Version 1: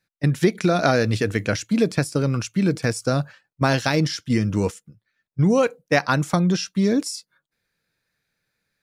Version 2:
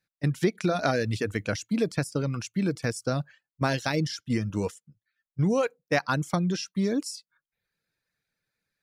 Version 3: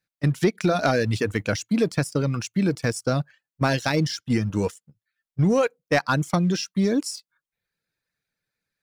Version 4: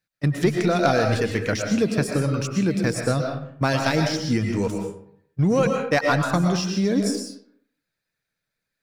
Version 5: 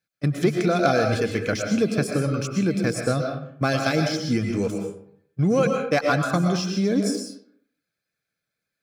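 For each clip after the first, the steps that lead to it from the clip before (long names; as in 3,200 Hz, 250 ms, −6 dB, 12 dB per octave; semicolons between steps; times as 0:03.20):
reverb reduction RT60 0.53 s; level −6 dB
leveller curve on the samples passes 1; level +1 dB
comb and all-pass reverb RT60 0.66 s, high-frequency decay 0.6×, pre-delay 80 ms, DRR 2.5 dB
notch comb filter 940 Hz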